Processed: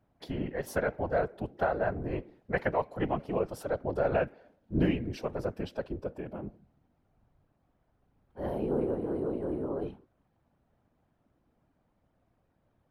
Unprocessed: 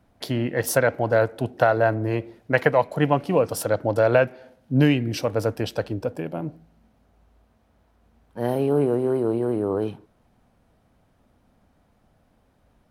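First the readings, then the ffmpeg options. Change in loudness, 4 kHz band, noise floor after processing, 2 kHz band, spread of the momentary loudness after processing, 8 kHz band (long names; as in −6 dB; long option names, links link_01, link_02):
−10.0 dB, −14.5 dB, −74 dBFS, −11.0 dB, 10 LU, below −15 dB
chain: -af "afftfilt=real='hypot(re,im)*cos(2*PI*random(0))':imag='hypot(re,im)*sin(2*PI*random(1))':win_size=512:overlap=0.75,highshelf=frequency=4000:gain=-11.5,volume=-3.5dB"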